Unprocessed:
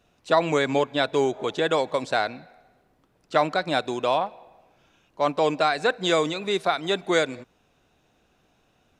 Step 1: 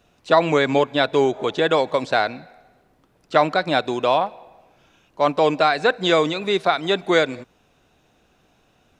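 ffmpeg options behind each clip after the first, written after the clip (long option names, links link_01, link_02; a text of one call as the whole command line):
ffmpeg -i in.wav -filter_complex "[0:a]acrossover=split=6000[link_01][link_02];[link_02]acompressor=threshold=-57dB:ratio=4:attack=1:release=60[link_03];[link_01][link_03]amix=inputs=2:normalize=0,volume=4.5dB" out.wav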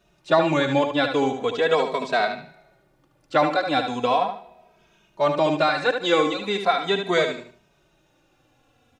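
ffmpeg -i in.wav -filter_complex "[0:a]aecho=1:1:74|148|222|296:0.447|0.134|0.0402|0.0121,asplit=2[link_01][link_02];[link_02]adelay=2.8,afreqshift=-0.39[link_03];[link_01][link_03]amix=inputs=2:normalize=1" out.wav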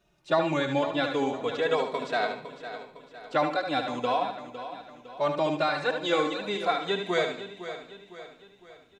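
ffmpeg -i in.wav -af "aecho=1:1:507|1014|1521|2028|2535:0.251|0.116|0.0532|0.0244|0.0112,volume=-6dB" out.wav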